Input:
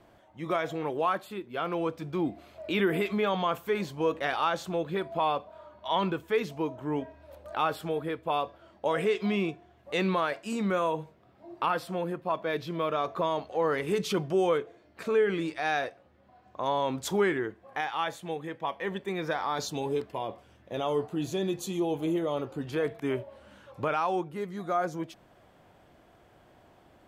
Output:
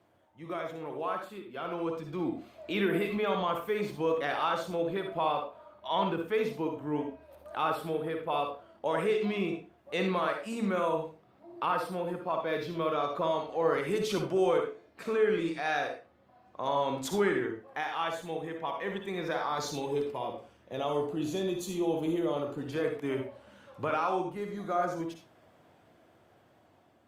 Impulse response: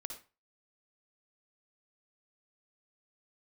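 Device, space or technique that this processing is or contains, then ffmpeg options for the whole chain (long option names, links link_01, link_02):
far-field microphone of a smart speaker: -filter_complex "[1:a]atrim=start_sample=2205[link_01];[0:a][link_01]afir=irnorm=-1:irlink=0,highpass=frequency=84:width=0.5412,highpass=frequency=84:width=1.3066,dynaudnorm=framelen=790:gausssize=5:maxgain=5.5dB,volume=-4.5dB" -ar 48000 -c:a libopus -b:a 48k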